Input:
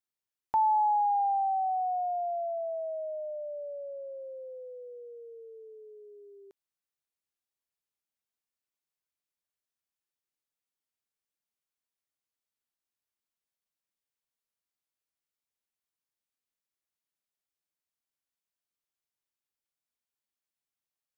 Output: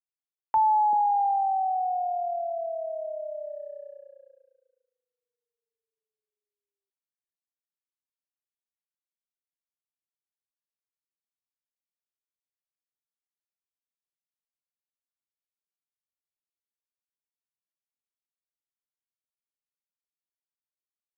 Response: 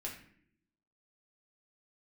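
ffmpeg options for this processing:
-filter_complex "[0:a]acrossover=split=170|520[s0][s1][s2];[s0]adelay=30[s3];[s1]adelay=390[s4];[s3][s4][s2]amix=inputs=3:normalize=0,agate=range=0.00355:threshold=0.00891:ratio=16:detection=peak,volume=1.68"

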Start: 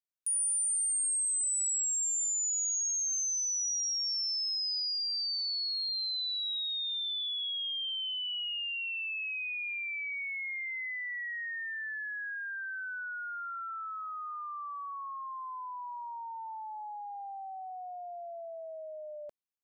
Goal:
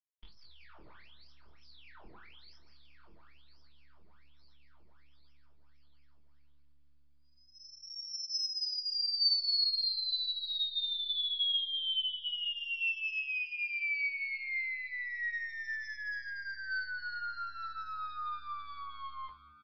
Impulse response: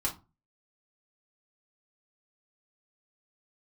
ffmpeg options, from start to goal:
-filter_complex "[0:a]lowshelf=f=240:g=-11.5,acompressor=threshold=0.0158:ratio=12,aeval=exprs='0.0178*(cos(1*acos(clip(val(0)/0.0178,-1,1)))-cos(1*PI/2))+0.00501*(cos(3*acos(clip(val(0)/0.0178,-1,1)))-cos(3*PI/2))+0.000708*(cos(4*acos(clip(val(0)/0.0178,-1,1)))-cos(4*PI/2))+0.000891*(cos(6*acos(clip(val(0)/0.0178,-1,1)))-cos(6*PI/2))':c=same,asetrate=78577,aresample=44100,atempo=0.561231,asplit=6[s0][s1][s2][s3][s4][s5];[s1]adelay=195,afreqshift=72,volume=0.141[s6];[s2]adelay=390,afreqshift=144,volume=0.0822[s7];[s3]adelay=585,afreqshift=216,volume=0.0473[s8];[s4]adelay=780,afreqshift=288,volume=0.0275[s9];[s5]adelay=975,afreqshift=360,volume=0.016[s10];[s0][s6][s7][s8][s9][s10]amix=inputs=6:normalize=0[s11];[1:a]atrim=start_sample=2205,asetrate=48510,aresample=44100[s12];[s11][s12]afir=irnorm=-1:irlink=0,aresample=11025,aresample=44100,volume=1.68"

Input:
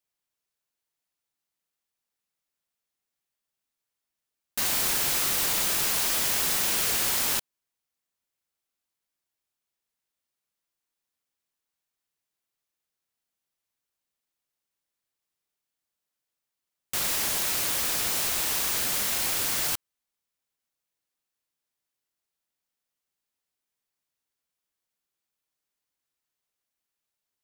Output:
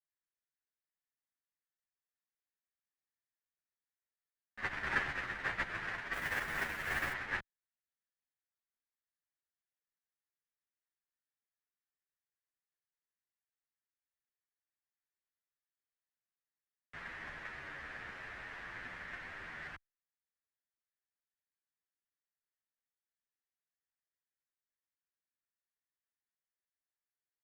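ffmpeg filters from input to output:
-filter_complex "[0:a]acrossover=split=150[s0][s1];[s0]acontrast=57[s2];[s2][s1]amix=inputs=2:normalize=0,lowpass=f=1800:t=q:w=4.2,asettb=1/sr,asplit=3[s3][s4][s5];[s3]atrim=end=6.134[s6];[s4]atrim=start=6.13:end=7.13,asetpts=PTS-STARTPTS,afade=t=in:d=0.004:c=qsin,afade=t=out:st=0.996:d=0.004:c=qsin,acrusher=bits=5:mix=0:aa=0.5[s7];[s5]atrim=start=7.126[s8];[s6][s7]acrossfade=d=0.004:c1=hsin:c2=qsin[s9];[s9][s8]acrossfade=d=0.004:c1=qsin:c2=hsin,agate=range=0.0355:threshold=0.0631:ratio=16:detection=peak,asplit=2[s10][s11];[s11]adelay=10.1,afreqshift=-0.46[s12];[s10][s12]amix=inputs=2:normalize=1,volume=5.31"

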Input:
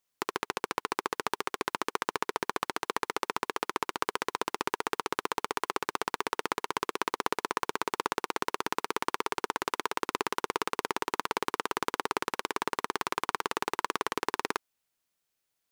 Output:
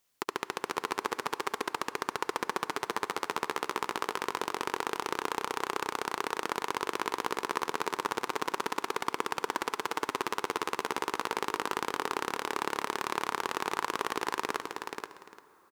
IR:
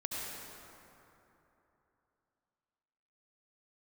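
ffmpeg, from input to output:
-filter_complex "[0:a]alimiter=limit=0.119:level=0:latency=1:release=176,aecho=1:1:479|826:0.531|0.106,asplit=2[s0][s1];[1:a]atrim=start_sample=2205[s2];[s1][s2]afir=irnorm=-1:irlink=0,volume=0.15[s3];[s0][s3]amix=inputs=2:normalize=0,volume=2"

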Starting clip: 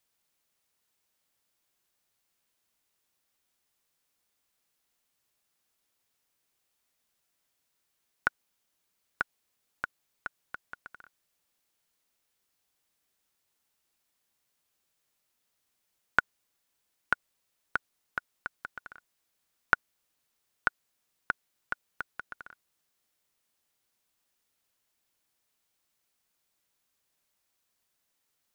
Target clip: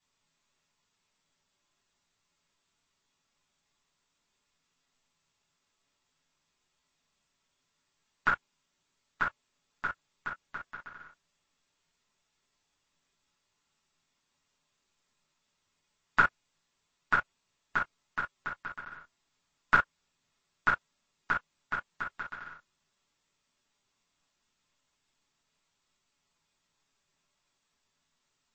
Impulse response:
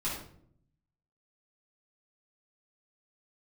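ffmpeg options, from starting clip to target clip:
-filter_complex "[0:a]asplit=3[s0][s1][s2];[s0]afade=t=out:st=22.12:d=0.02[s3];[s1]equalizer=f=4000:w=0.63:g=2.5,afade=t=in:st=22.12:d=0.02,afade=t=out:st=22.52:d=0.02[s4];[s2]afade=t=in:st=22.52:d=0.02[s5];[s3][s4][s5]amix=inputs=3:normalize=0[s6];[1:a]atrim=start_sample=2205,atrim=end_sample=3087[s7];[s6][s7]afir=irnorm=-1:irlink=0" -ar 22050 -c:a libmp3lame -b:a 32k

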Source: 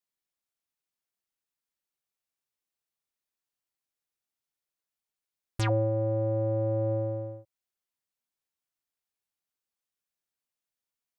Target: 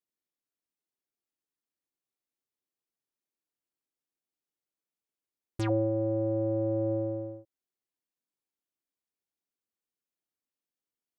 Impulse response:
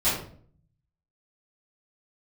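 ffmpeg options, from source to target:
-af "equalizer=f=310:w=0.87:g=11.5,volume=0.447"

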